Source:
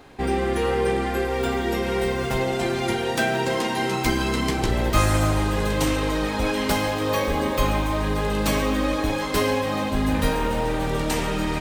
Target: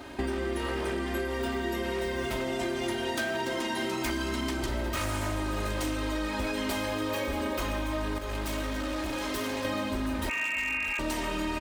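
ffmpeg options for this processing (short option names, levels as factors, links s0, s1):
-filter_complex "[0:a]asettb=1/sr,asplit=3[s0][s1][s2];[s0]atrim=end=8.184[s3];[s1]atrim=start=8.18:end=9.65,asetpts=PTS-STARTPTS,afade=t=in:d=0.004:c=qsin,afade=t=out:st=1.466:d=0.004:c=qsin,aeval=exprs='(tanh(39.8*val(0)+0.65)-tanh(0.65))/39.8':c=same[s4];[s2]atrim=start=9.646[s5];[s3][s4]acrossfade=d=0.004:c1=hsin:c2=qsin[s6];[s6][s5]acrossfade=d=0.004:c1=qsin:c2=hsin,asettb=1/sr,asplit=3[s7][s8][s9];[s7]atrim=end=10.294[s10];[s8]atrim=start=10.29:end=10.99,asetpts=PTS-STARTPTS,afade=t=in:d=0.004:c=qsin,afade=t=out:st=0.696:d=0.004:c=qsin,lowpass=f=2400:t=q:w=0.5098,lowpass=f=2400:t=q:w=0.6013,lowpass=f=2400:t=q:w=0.9,lowpass=f=2400:t=q:w=2.563,afreqshift=-2800[s11];[s9]atrim=start=10.986[s12];[s10][s11]acrossfade=d=0.004:c1=hsin:c2=qsin[s13];[s13][s12]acrossfade=d=0.004:c1=qsin:c2=hsin,aecho=1:1:634:0.15,aeval=exprs='0.141*(abs(mod(val(0)/0.141+3,4)-2)-1)':c=same,highpass=41,aecho=1:1:3.2:0.68,acompressor=threshold=0.0251:ratio=6,volume=1.41"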